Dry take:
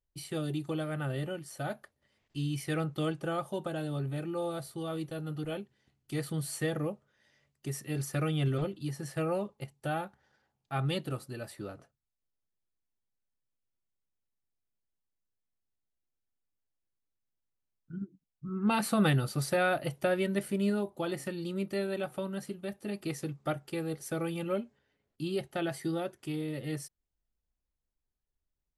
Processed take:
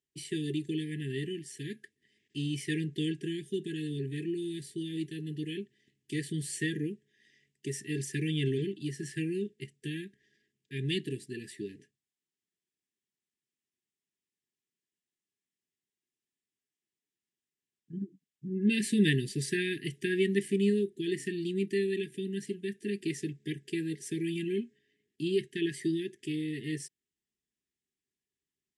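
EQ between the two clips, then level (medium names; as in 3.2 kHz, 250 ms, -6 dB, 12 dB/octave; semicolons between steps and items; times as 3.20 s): brick-wall FIR band-stop 450–1600 Hz; cabinet simulation 220–8600 Hz, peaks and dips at 290 Hz -3 dB, 1.5 kHz -3 dB, 2.3 kHz -4 dB, 4.3 kHz -8 dB, 6.1 kHz -4 dB; +6.0 dB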